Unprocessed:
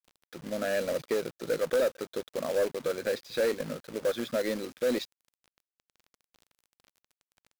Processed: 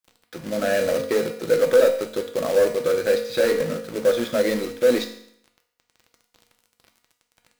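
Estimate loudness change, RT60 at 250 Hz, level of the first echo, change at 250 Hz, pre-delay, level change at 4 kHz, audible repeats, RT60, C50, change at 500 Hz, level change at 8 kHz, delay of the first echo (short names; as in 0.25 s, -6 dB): +9.5 dB, 0.70 s, none, +8.0 dB, 4 ms, +8.0 dB, none, 0.70 s, 9.0 dB, +10.0 dB, +8.0 dB, none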